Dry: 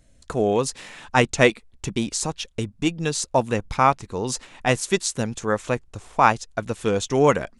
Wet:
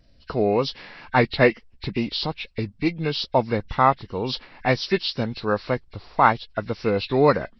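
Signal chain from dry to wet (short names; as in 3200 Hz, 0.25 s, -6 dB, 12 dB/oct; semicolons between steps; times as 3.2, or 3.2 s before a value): nonlinear frequency compression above 1500 Hz 1.5:1; wow and flutter 33 cents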